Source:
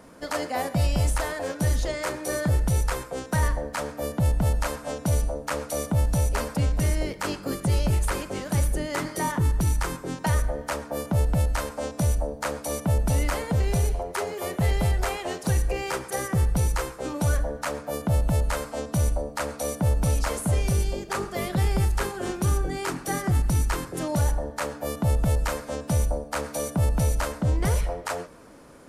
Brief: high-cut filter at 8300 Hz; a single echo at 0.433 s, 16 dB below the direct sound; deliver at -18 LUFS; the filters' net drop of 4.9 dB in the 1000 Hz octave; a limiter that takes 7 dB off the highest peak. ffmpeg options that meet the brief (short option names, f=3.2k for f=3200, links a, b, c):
-af "lowpass=8.3k,equalizer=f=1k:t=o:g=-6.5,alimiter=limit=-20dB:level=0:latency=1,aecho=1:1:433:0.158,volume=12.5dB"